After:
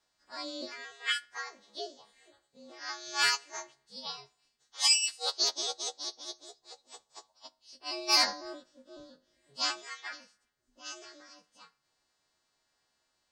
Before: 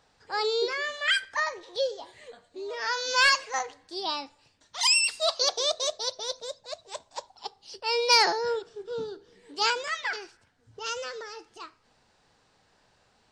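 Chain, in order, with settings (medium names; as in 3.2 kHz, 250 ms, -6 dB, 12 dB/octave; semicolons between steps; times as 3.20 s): partials quantised in pitch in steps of 2 st; ring modulator 140 Hz; upward expansion 1.5:1, over -34 dBFS; trim -4.5 dB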